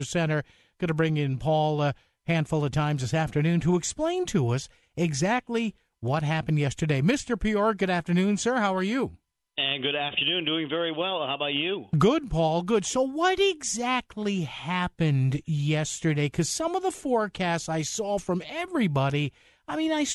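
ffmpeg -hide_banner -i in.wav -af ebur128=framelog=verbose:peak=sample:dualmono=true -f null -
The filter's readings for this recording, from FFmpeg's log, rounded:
Integrated loudness:
  I:         -23.4 LUFS
  Threshold: -33.5 LUFS
Loudness range:
  LRA:         2.0 LU
  Threshold: -43.4 LUFS
  LRA low:   -24.3 LUFS
  LRA high:  -22.3 LUFS
Sample peak:
  Peak:       -8.8 dBFS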